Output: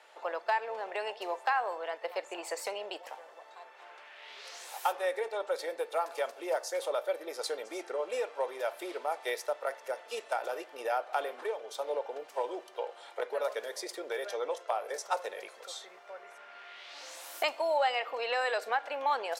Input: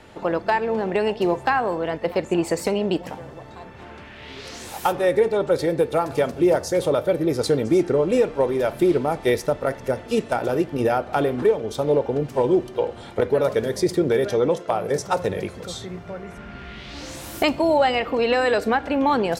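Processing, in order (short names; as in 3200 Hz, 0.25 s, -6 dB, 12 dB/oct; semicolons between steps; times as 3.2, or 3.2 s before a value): HPF 570 Hz 24 dB/oct; gain -8 dB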